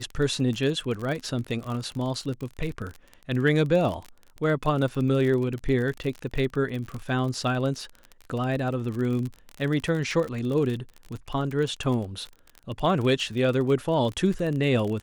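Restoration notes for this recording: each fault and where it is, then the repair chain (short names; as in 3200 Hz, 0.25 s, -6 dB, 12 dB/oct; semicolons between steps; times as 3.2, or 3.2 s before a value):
crackle 35/s -30 dBFS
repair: de-click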